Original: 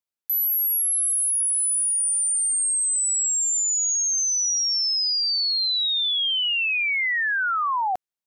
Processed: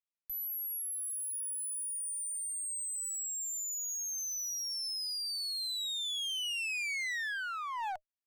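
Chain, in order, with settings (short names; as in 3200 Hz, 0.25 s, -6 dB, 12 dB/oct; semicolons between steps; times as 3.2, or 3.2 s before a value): rippled Chebyshev high-pass 600 Hz, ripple 6 dB; one-sided clip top -32 dBFS, bottom -23.5 dBFS; gain -7.5 dB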